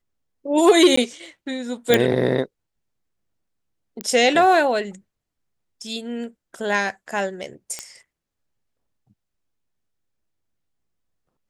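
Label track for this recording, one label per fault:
0.960000	0.970000	drop-out 14 ms
1.940000	1.940000	click −1 dBFS
4.010000	4.010000	click −11 dBFS
7.790000	7.790000	click −14 dBFS

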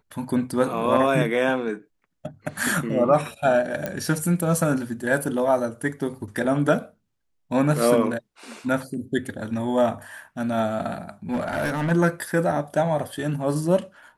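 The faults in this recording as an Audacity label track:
3.860000	3.860000	click −13 dBFS
11.310000	11.920000	clipping −20.5 dBFS

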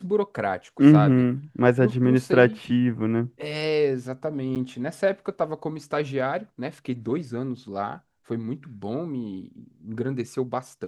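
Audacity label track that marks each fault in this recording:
4.550000	4.560000	drop-out 8.6 ms

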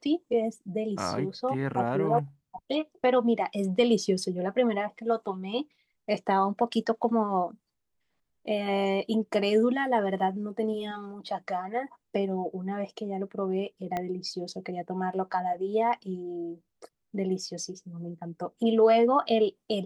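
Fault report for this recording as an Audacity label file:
13.970000	13.970000	click −18 dBFS

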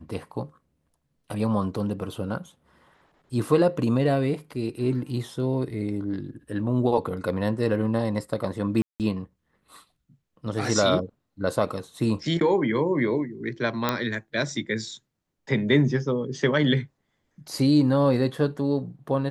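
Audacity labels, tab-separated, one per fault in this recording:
8.820000	9.000000	drop-out 178 ms
13.890000	13.890000	click −8 dBFS

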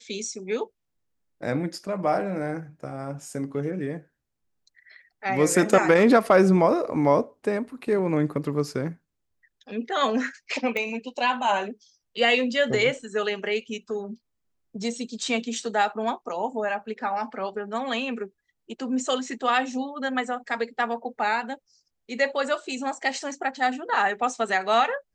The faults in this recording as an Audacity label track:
10.770000	10.770000	click −16 dBFS

